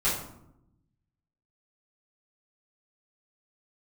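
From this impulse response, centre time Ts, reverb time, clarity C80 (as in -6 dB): 45 ms, 0.80 s, 7.5 dB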